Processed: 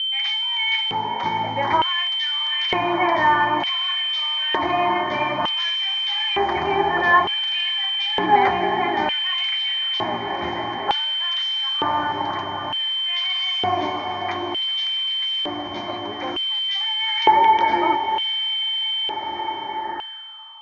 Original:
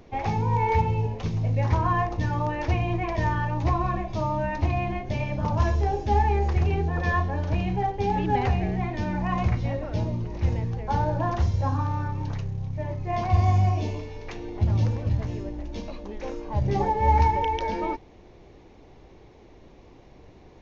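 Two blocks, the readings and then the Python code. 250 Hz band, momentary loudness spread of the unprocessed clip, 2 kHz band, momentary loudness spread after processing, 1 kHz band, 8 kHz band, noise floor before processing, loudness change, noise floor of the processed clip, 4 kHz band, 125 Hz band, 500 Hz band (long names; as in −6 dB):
0.0 dB, 9 LU, +11.5 dB, 9 LU, +7.0 dB, can't be measured, −51 dBFS, +5.5 dB, −30 dBFS, +28.5 dB, −17.0 dB, +3.0 dB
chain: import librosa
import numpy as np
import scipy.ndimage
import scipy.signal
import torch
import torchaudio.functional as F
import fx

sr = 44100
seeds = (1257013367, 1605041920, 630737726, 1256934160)

p1 = fx.high_shelf(x, sr, hz=4400.0, db=11.0)
p2 = fx.fold_sine(p1, sr, drive_db=4, ceiling_db=-8.5)
p3 = p1 + (p2 * librosa.db_to_amplitude(-9.5))
p4 = fx.echo_diffused(p3, sr, ms=626, feedback_pct=77, wet_db=-10)
p5 = p4 + 10.0 ** (-27.0 / 20.0) * np.sin(2.0 * np.pi * 3100.0 * np.arange(len(p4)) / sr)
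p6 = fx.filter_sweep_lowpass(p5, sr, from_hz=2400.0, to_hz=1100.0, start_s=19.61, end_s=20.59, q=5.4)
p7 = fx.fixed_phaser(p6, sr, hz=1100.0, stages=4)
p8 = fx.filter_lfo_highpass(p7, sr, shape='square', hz=0.55, low_hz=400.0, high_hz=3000.0, q=4.5)
y = p8 * librosa.db_to_amplitude(3.5)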